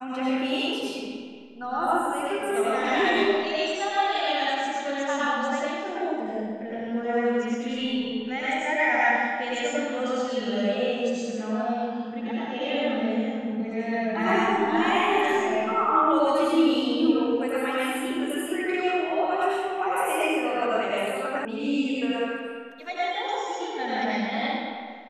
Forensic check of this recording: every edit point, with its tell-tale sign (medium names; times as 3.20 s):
21.45 s: sound stops dead